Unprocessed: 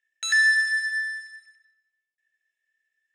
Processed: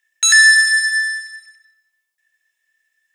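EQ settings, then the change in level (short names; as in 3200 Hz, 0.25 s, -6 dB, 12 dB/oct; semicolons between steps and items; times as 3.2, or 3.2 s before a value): bell 980 Hz +8.5 dB 0.73 oct; high shelf 3200 Hz +11 dB; dynamic EQ 8000 Hz, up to +5 dB, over -38 dBFS, Q 1; +5.0 dB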